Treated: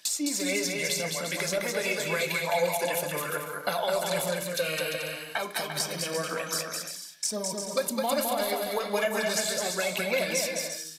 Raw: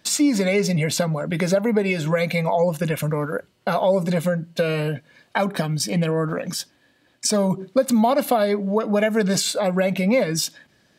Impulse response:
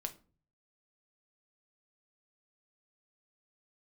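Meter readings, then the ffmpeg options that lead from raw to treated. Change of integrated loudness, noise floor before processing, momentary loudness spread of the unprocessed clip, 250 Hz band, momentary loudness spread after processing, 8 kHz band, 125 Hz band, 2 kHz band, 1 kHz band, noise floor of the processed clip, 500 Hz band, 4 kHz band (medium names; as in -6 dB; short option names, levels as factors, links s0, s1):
-7.0 dB, -61 dBFS, 7 LU, -14.5 dB, 5 LU, -1.5 dB, -17.0 dB, -2.0 dB, -6.0 dB, -41 dBFS, -8.0 dB, -2.0 dB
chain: -filter_complex "[0:a]aderivative,bandreject=f=157:t=h:w=4,bandreject=f=314:t=h:w=4,bandreject=f=471:t=h:w=4,bandreject=f=628:t=h:w=4,bandreject=f=785:t=h:w=4,bandreject=f=942:t=h:w=4,bandreject=f=1099:t=h:w=4,bandreject=f=1256:t=h:w=4,bandreject=f=1413:t=h:w=4,bandreject=f=1570:t=h:w=4,bandreject=f=1727:t=h:w=4,bandreject=f=1884:t=h:w=4,bandreject=f=2041:t=h:w=4,bandreject=f=2198:t=h:w=4,bandreject=f=2355:t=h:w=4,bandreject=f=2512:t=h:w=4,bandreject=f=2669:t=h:w=4,bandreject=f=2826:t=h:w=4,bandreject=f=2983:t=h:w=4,bandreject=f=3140:t=h:w=4,bandreject=f=3297:t=h:w=4,bandreject=f=3454:t=h:w=4,bandreject=f=3611:t=h:w=4,bandreject=f=3768:t=h:w=4,bandreject=f=3925:t=h:w=4,bandreject=f=4082:t=h:w=4,bandreject=f=4239:t=h:w=4,bandreject=f=4396:t=h:w=4,bandreject=f=4553:t=h:w=4,bandreject=f=4710:t=h:w=4,bandreject=f=4867:t=h:w=4,bandreject=f=5024:t=h:w=4,bandreject=f=5181:t=h:w=4,bandreject=f=5338:t=h:w=4,bandreject=f=5495:t=h:w=4,bandreject=f=5652:t=h:w=4,bandreject=f=5809:t=h:w=4,bandreject=f=5966:t=h:w=4,bandreject=f=6123:t=h:w=4,acrossover=split=670[s0][s1];[s1]acompressor=threshold=0.00708:ratio=4[s2];[s0][s2]amix=inputs=2:normalize=0,aphaser=in_gain=1:out_gain=1:delay=3.7:decay=0.44:speed=1.9:type=triangular,aecho=1:1:210|346.5|435.2|492.9|530.4:0.631|0.398|0.251|0.158|0.1,asplit=2[s3][s4];[1:a]atrim=start_sample=2205,highshelf=f=8800:g=-11[s5];[s4][s5]afir=irnorm=-1:irlink=0,volume=1.88[s6];[s3][s6]amix=inputs=2:normalize=0,aresample=32000,aresample=44100,volume=1.68"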